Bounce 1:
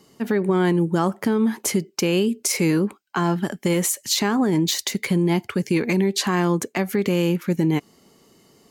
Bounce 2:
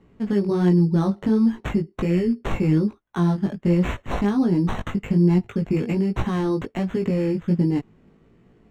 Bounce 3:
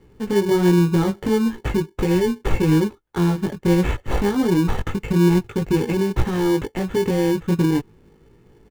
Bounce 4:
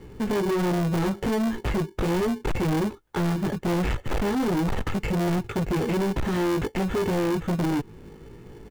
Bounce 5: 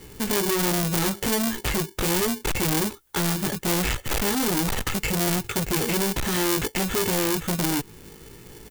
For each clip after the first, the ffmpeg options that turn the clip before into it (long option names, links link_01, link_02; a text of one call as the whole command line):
ffmpeg -i in.wav -af "acrusher=samples=9:mix=1:aa=0.000001,flanger=delay=16.5:depth=3.5:speed=1.3,aemphasis=mode=reproduction:type=riaa,volume=-3.5dB" out.wav
ffmpeg -i in.wav -filter_complex "[0:a]aecho=1:1:2.3:0.48,asplit=2[link_01][link_02];[link_02]acrusher=samples=34:mix=1:aa=0.000001,volume=-5dB[link_03];[link_01][link_03]amix=inputs=2:normalize=0" out.wav
ffmpeg -i in.wav -filter_complex "[0:a]asplit=2[link_01][link_02];[link_02]acompressor=threshold=-26dB:ratio=6,volume=3dB[link_03];[link_01][link_03]amix=inputs=2:normalize=0,asoftclip=type=tanh:threshold=-22dB" out.wav
ffmpeg -i in.wav -af "crystalizer=i=7:c=0,volume=-2dB" out.wav